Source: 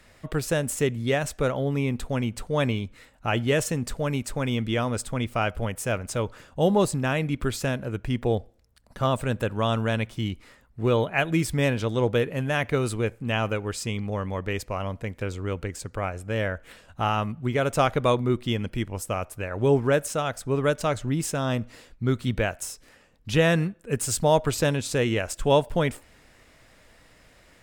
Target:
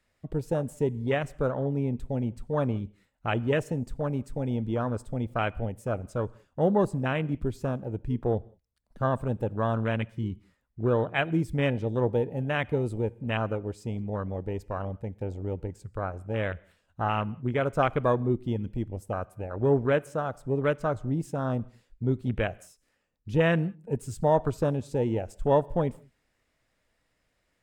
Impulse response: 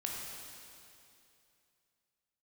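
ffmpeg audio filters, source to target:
-filter_complex "[0:a]afwtdn=0.0398,asplit=2[s0][s1];[1:a]atrim=start_sample=2205,afade=t=out:st=0.25:d=0.01,atrim=end_sample=11466[s2];[s1][s2]afir=irnorm=-1:irlink=0,volume=0.0944[s3];[s0][s3]amix=inputs=2:normalize=0,volume=0.708"

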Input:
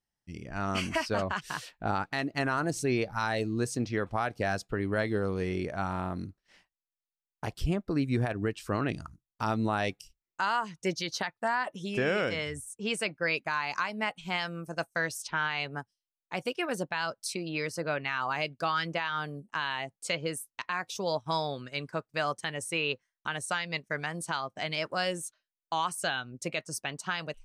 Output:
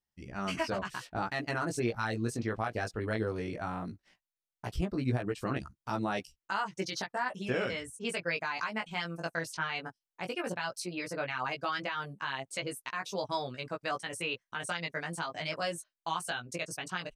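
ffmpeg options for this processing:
-af "atempo=1.6,flanger=delay=15:depth=3.1:speed=0.16"

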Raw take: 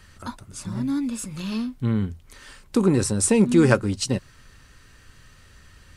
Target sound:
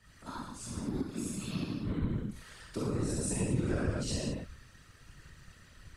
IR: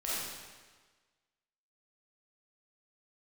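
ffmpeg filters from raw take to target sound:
-filter_complex "[1:a]atrim=start_sample=2205,afade=t=out:st=0.33:d=0.01,atrim=end_sample=14994[s0];[0:a][s0]afir=irnorm=-1:irlink=0,afftfilt=real='hypot(re,im)*cos(2*PI*random(0))':imag='hypot(re,im)*sin(2*PI*random(1))':win_size=512:overlap=0.75,acrossover=split=120[s1][s2];[s2]acompressor=threshold=0.0398:ratio=5[s3];[s1][s3]amix=inputs=2:normalize=0,volume=0.596"

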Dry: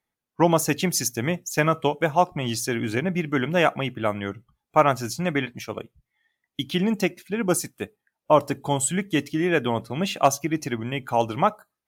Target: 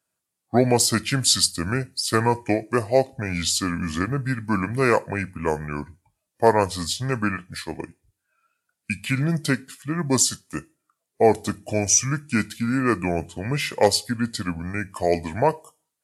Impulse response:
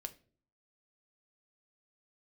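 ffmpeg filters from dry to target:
-filter_complex "[0:a]highpass=100,asplit=2[s0][s1];[s1]aderivative[s2];[1:a]atrim=start_sample=2205,asetrate=70560,aresample=44100[s3];[s2][s3]afir=irnorm=-1:irlink=0,volume=3.35[s4];[s0][s4]amix=inputs=2:normalize=0,asetrate=32667,aresample=44100"

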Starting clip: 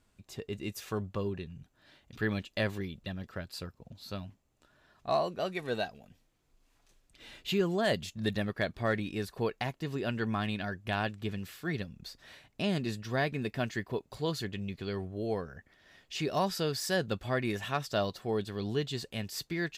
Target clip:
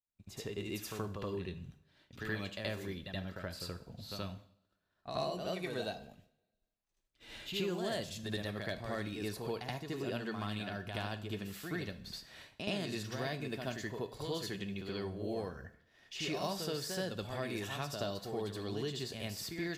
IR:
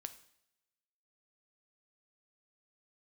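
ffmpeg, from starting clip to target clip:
-filter_complex "[0:a]acrossover=split=380|3000[s0][s1][s2];[s0]acompressor=threshold=0.00708:ratio=4[s3];[s1]acompressor=threshold=0.01:ratio=4[s4];[s2]acompressor=threshold=0.00708:ratio=4[s5];[s3][s4][s5]amix=inputs=3:normalize=0,adynamicequalizer=threshold=0.00158:dfrequency=2200:dqfactor=0.73:tfrequency=2200:tqfactor=0.73:attack=5:release=100:ratio=0.375:range=2:mode=cutabove:tftype=bell,agate=range=0.0224:threshold=0.00251:ratio=3:detection=peak,asplit=2[s6][s7];[1:a]atrim=start_sample=2205,adelay=76[s8];[s7][s8]afir=irnorm=-1:irlink=0,volume=2.99[s9];[s6][s9]amix=inputs=2:normalize=0,volume=0.596"

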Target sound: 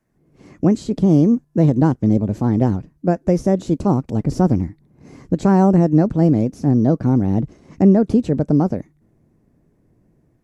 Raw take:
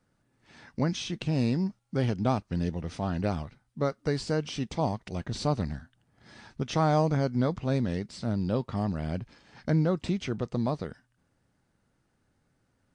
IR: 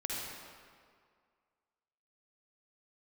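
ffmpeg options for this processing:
-filter_complex "[0:a]asetrate=54684,aresample=44100,equalizer=f=3300:t=o:w=0.97:g=-6,acrossover=split=570[s0][s1];[s0]dynaudnorm=f=110:g=3:m=5.62[s2];[s2][s1]amix=inputs=2:normalize=0"

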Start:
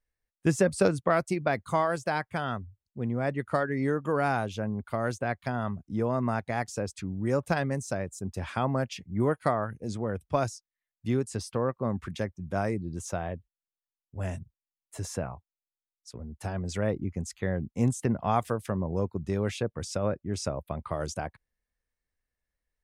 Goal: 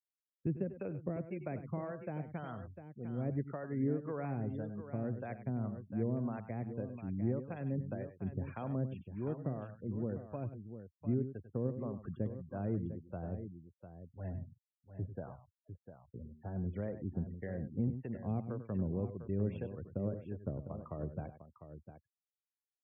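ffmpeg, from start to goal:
-filter_complex "[0:a]lowpass=f=2900:w=0.5412,lowpass=f=2900:w=1.3066,afftfilt=real='re*gte(hypot(re,im),0.0141)':imag='im*gte(hypot(re,im),0.0141)':win_size=1024:overlap=0.75,highpass=81,equalizer=f=1600:w=0.45:g=-11.5,acrossover=split=590|2000[s0][s1][s2];[s1]acompressor=threshold=0.00631:ratio=6[s3];[s0][s3][s2]amix=inputs=3:normalize=0,alimiter=limit=0.0794:level=0:latency=1:release=285,acrossover=split=560[s4][s5];[s4]aeval=exprs='val(0)*(1-0.7/2+0.7/2*cos(2*PI*1.8*n/s))':c=same[s6];[s5]aeval=exprs='val(0)*(1-0.7/2-0.7/2*cos(2*PI*1.8*n/s))':c=same[s7];[s6][s7]amix=inputs=2:normalize=0,asplit=2[s8][s9];[s9]aecho=0:1:92|100|701:0.133|0.237|0.299[s10];[s8][s10]amix=inputs=2:normalize=0,volume=0.841"

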